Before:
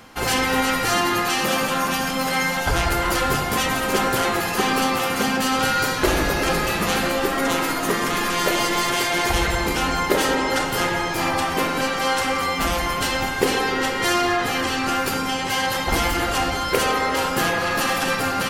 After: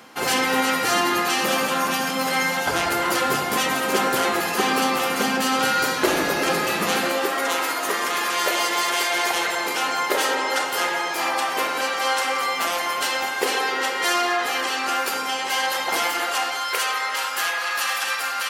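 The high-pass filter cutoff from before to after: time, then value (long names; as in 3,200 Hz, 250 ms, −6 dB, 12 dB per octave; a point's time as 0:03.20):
0:06.92 210 Hz
0:07.45 500 Hz
0:16.00 500 Hz
0:16.93 1,100 Hz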